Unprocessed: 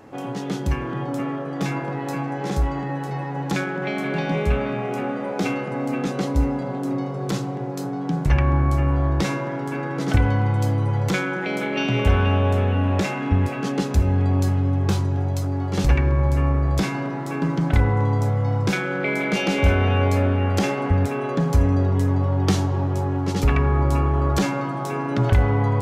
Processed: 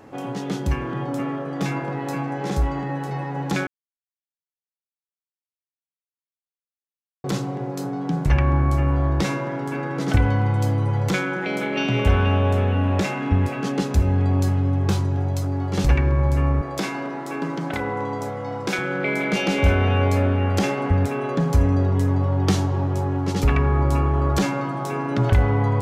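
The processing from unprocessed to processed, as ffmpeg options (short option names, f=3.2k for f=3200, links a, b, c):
-filter_complex "[0:a]asettb=1/sr,asplit=3[a][b][c];[a]atrim=end=16.614[d];[b]atrim=start=16.61:end=18.79,asetpts=PTS-STARTPTS,afade=t=in:d=0.004:c=qsin,afade=t=out:st=2.176:d=0.004:c=qsin,highpass=260[e];[c]atrim=start=18.786[f];[d][e]acrossfade=d=0.004:c1=hsin:c2=qsin[g];[g][f]acrossfade=d=0.004:c1=qsin:c2=hsin,asplit=3[h][i][j];[h]atrim=end=3.67,asetpts=PTS-STARTPTS,afade=t=out:st=3.666:d=0.004:c=hsin[k];[i]atrim=start=3.67:end=7.24,asetpts=PTS-STARTPTS,volume=0[l];[j]atrim=start=7.24,asetpts=PTS-STARTPTS,afade=t=in:d=0.004:c=hsin[m];[k][l][m]concat=n=3:v=0:a=1"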